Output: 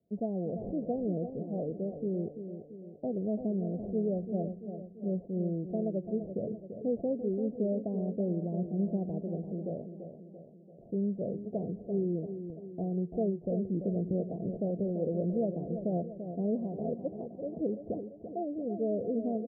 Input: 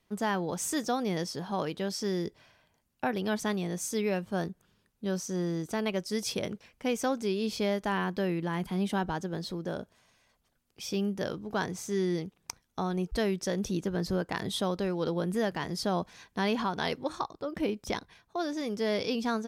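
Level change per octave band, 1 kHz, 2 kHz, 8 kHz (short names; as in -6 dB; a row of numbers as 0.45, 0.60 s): -12.0 dB, under -40 dB, under -40 dB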